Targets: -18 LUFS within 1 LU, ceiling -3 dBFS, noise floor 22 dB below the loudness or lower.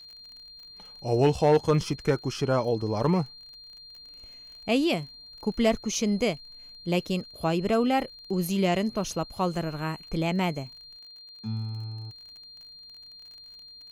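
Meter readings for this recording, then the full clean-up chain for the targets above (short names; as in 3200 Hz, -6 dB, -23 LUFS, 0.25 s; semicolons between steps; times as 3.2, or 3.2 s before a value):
ticks 35/s; steady tone 4200 Hz; tone level -45 dBFS; loudness -27.5 LUFS; peak -13.0 dBFS; loudness target -18.0 LUFS
-> de-click; notch 4200 Hz, Q 30; gain +9.5 dB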